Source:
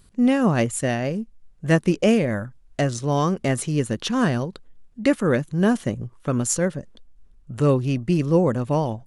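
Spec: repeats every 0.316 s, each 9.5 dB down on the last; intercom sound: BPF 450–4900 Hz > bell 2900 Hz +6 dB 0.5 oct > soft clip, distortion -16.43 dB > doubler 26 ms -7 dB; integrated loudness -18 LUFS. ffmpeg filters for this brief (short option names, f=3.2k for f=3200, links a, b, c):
-filter_complex "[0:a]highpass=450,lowpass=4.9k,equalizer=f=2.9k:t=o:w=0.5:g=6,aecho=1:1:316|632|948|1264:0.335|0.111|0.0365|0.012,asoftclip=threshold=-15dB,asplit=2[a][b];[b]adelay=26,volume=-7dB[c];[a][c]amix=inputs=2:normalize=0,volume=9.5dB"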